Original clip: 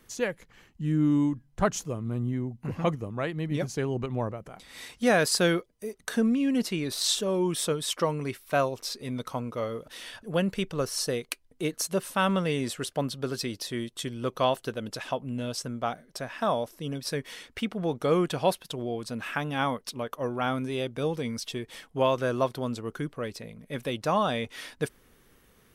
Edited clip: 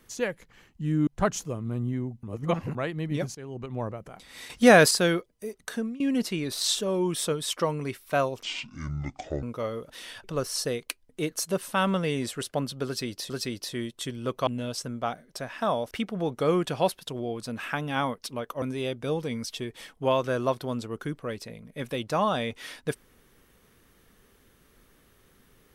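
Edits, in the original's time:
1.07–1.47 s: delete
2.63–3.15 s: reverse
3.75–4.36 s: fade in, from -16.5 dB
4.90–5.31 s: gain +7 dB
5.98–6.40 s: fade out, to -19 dB
8.83–9.41 s: speed 58%
10.22–10.66 s: delete
13.28–13.72 s: loop, 2 plays
14.45–15.27 s: delete
16.71–17.54 s: delete
20.25–20.56 s: delete

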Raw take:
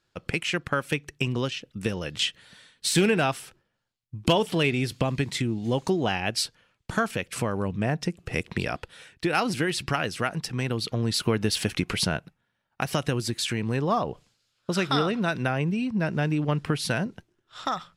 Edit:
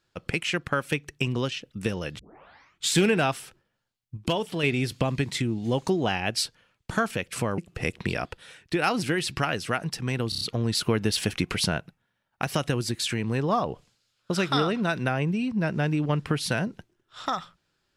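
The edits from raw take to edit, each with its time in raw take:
2.19 s: tape start 0.77 s
4.17–4.63 s: gain -5 dB
7.58–8.09 s: delete
10.80 s: stutter 0.03 s, 5 plays

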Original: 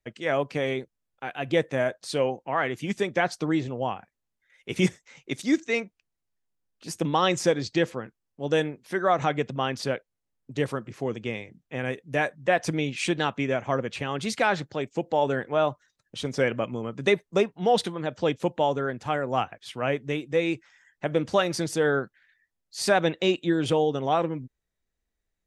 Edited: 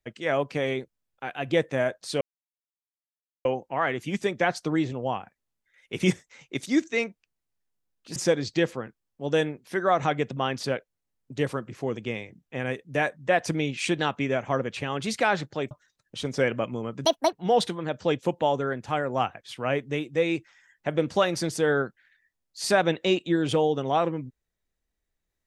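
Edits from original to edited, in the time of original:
2.21 s: insert silence 1.24 s
6.92–7.35 s: delete
14.90–15.71 s: delete
17.05–17.50 s: speed 162%

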